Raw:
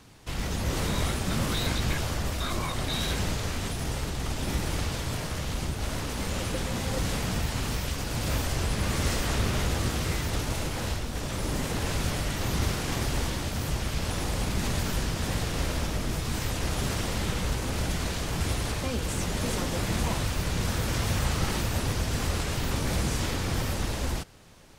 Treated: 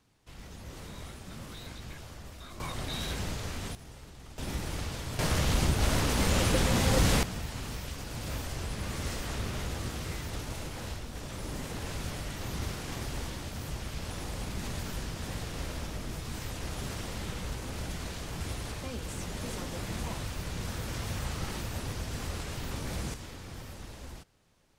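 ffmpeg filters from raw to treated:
ffmpeg -i in.wav -af "asetnsamples=nb_out_samples=441:pad=0,asendcmd='2.6 volume volume -6dB;3.75 volume volume -17.5dB;4.38 volume volume -6dB;5.19 volume volume 4.5dB;7.23 volume volume -8dB;23.14 volume volume -15dB',volume=-16dB" out.wav

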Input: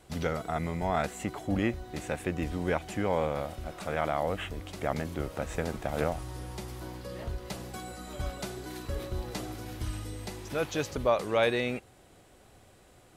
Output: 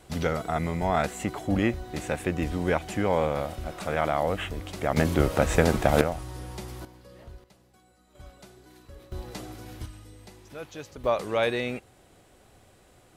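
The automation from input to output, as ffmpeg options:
ffmpeg -i in.wav -af "asetnsamples=nb_out_samples=441:pad=0,asendcmd='4.97 volume volume 11.5dB;6.01 volume volume 1.5dB;6.85 volume volume -9.5dB;7.44 volume volume -20dB;8.15 volume volume -12.5dB;9.12 volume volume -2dB;9.86 volume volume -9dB;11.04 volume volume 0.5dB',volume=4dB" out.wav

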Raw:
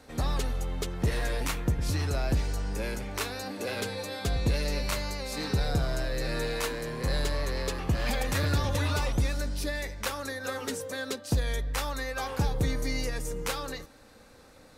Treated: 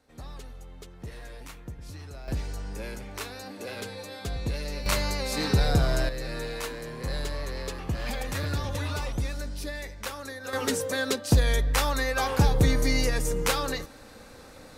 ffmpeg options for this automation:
ffmpeg -i in.wav -af "asetnsamples=nb_out_samples=441:pad=0,asendcmd='2.28 volume volume -4dB;4.86 volume volume 5dB;6.09 volume volume -3dB;10.53 volume volume 6.5dB',volume=-13dB" out.wav

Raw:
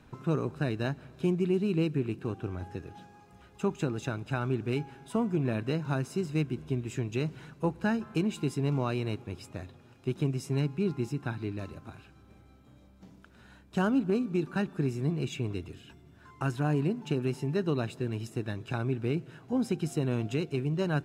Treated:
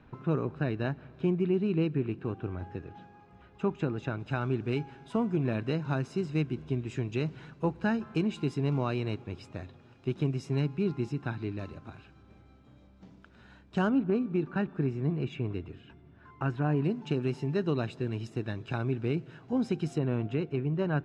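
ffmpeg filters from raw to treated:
ffmpeg -i in.wav -af "asetnsamples=nb_out_samples=441:pad=0,asendcmd='4.2 lowpass f 5000;13.89 lowpass f 2500;16.84 lowpass f 5200;19.98 lowpass f 2300',lowpass=2900" out.wav

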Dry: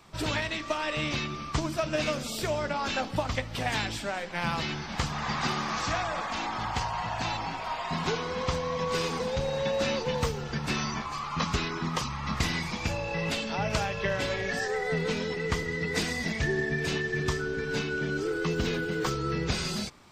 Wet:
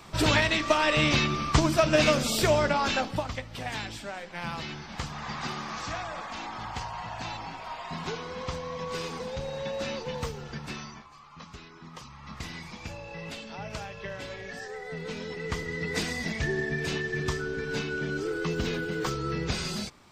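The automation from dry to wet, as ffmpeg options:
ffmpeg -i in.wav -af "volume=23dB,afade=type=out:start_time=2.54:duration=0.8:silence=0.251189,afade=type=out:start_time=10.49:duration=0.6:silence=0.251189,afade=type=in:start_time=11.72:duration=0.98:silence=0.398107,afade=type=in:start_time=14.92:duration=0.97:silence=0.398107" out.wav

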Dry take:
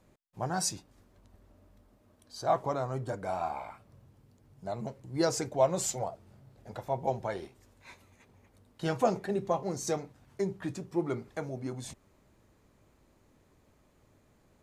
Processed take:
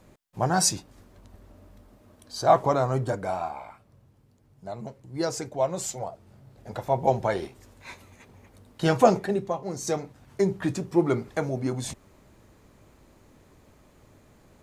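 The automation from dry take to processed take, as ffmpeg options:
ffmpeg -i in.wav -af "volume=28dB,afade=type=out:start_time=2.99:duration=0.53:silence=0.354813,afade=type=in:start_time=5.97:duration=1.2:silence=0.354813,afade=type=out:start_time=9.1:duration=0.46:silence=0.316228,afade=type=in:start_time=9.56:duration=0.97:silence=0.316228" out.wav

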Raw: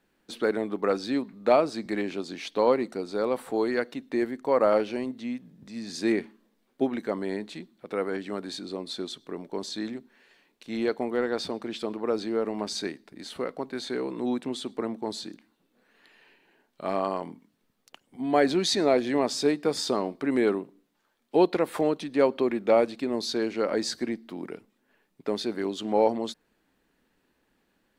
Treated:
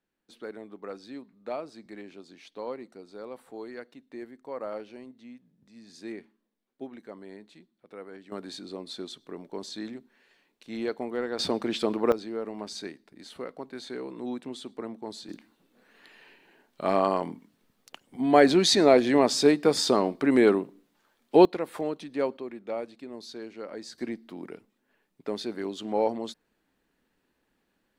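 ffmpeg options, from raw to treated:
ffmpeg -i in.wav -af "asetnsamples=nb_out_samples=441:pad=0,asendcmd='8.32 volume volume -4dB;11.39 volume volume 5dB;12.12 volume volume -6dB;15.29 volume volume 4dB;21.45 volume volume -6dB;22.37 volume volume -12.5dB;23.98 volume volume -3.5dB',volume=-14dB" out.wav

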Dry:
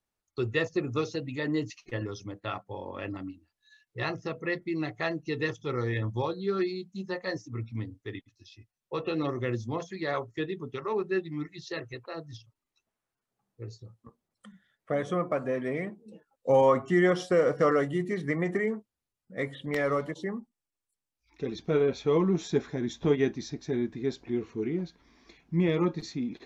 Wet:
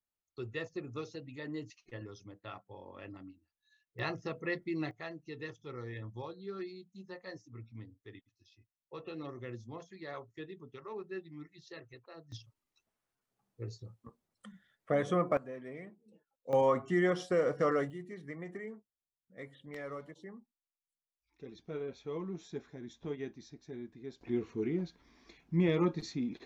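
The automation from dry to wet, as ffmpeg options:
ffmpeg -i in.wav -af "asetnsamples=nb_out_samples=441:pad=0,asendcmd='3.99 volume volume -4.5dB;4.91 volume volume -13dB;12.32 volume volume -1dB;15.37 volume volume -14dB;16.53 volume volume -6dB;17.9 volume volume -15dB;24.21 volume volume -3dB',volume=-11.5dB" out.wav

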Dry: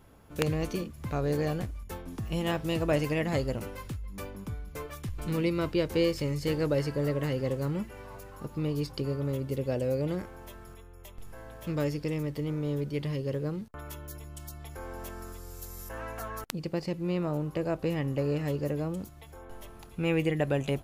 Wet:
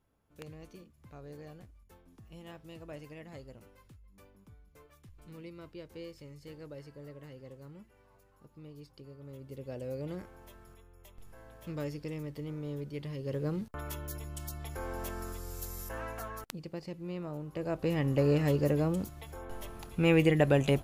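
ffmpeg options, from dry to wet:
ffmpeg -i in.wav -af "volume=14dB,afade=type=in:start_time=9.17:duration=1.02:silence=0.266073,afade=type=in:start_time=13.16:duration=0.53:silence=0.334965,afade=type=out:start_time=15.61:duration=1.05:silence=0.281838,afade=type=in:start_time=17.47:duration=0.8:silence=0.251189" out.wav

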